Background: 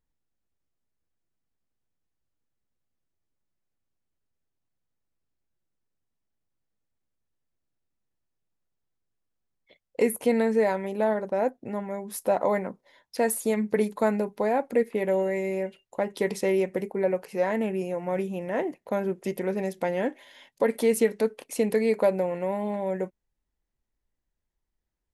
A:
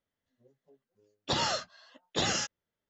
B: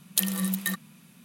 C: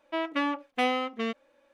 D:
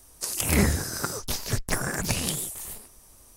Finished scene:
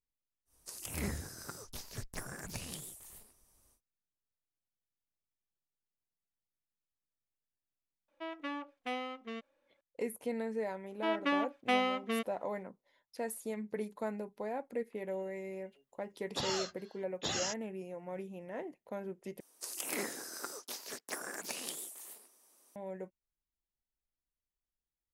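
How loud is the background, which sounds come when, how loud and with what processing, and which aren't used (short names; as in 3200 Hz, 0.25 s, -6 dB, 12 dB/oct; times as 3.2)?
background -14 dB
0.45 add D -16 dB, fades 0.10 s
8.08 add C -12 dB
10.9 add C -3.5 dB
15.07 add A -8.5 dB + high shelf 7200 Hz +10.5 dB
19.4 replace with D -12 dB + HPF 280 Hz 24 dB/oct
not used: B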